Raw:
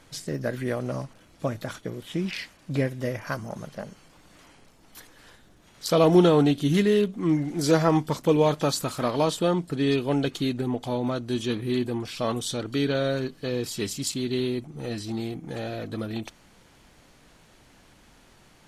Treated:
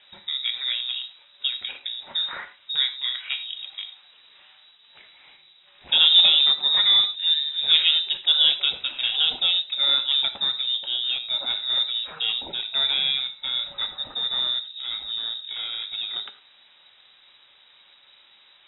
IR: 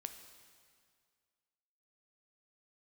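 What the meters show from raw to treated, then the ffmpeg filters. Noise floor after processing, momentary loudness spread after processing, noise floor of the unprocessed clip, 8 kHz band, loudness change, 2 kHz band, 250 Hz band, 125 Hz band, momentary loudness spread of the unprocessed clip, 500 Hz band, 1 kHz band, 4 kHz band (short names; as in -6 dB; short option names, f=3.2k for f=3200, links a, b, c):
-56 dBFS, 14 LU, -56 dBFS, under -40 dB, +5.0 dB, +3.5 dB, under -25 dB, under -25 dB, 13 LU, -23.0 dB, -9.0 dB, +19.0 dB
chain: -filter_complex "[0:a]aeval=exprs='0.473*(cos(1*acos(clip(val(0)/0.473,-1,1)))-cos(1*PI/2))+0.00841*(cos(6*acos(clip(val(0)/0.473,-1,1)))-cos(6*PI/2))':c=same[a];[1:a]atrim=start_sample=2205,afade=t=out:st=0.16:d=0.01,atrim=end_sample=7497[b];[a][b]afir=irnorm=-1:irlink=0,lowpass=f=3.3k:t=q:w=0.5098,lowpass=f=3.3k:t=q:w=0.6013,lowpass=f=3.3k:t=q:w=0.9,lowpass=f=3.3k:t=q:w=2.563,afreqshift=-3900,volume=5dB"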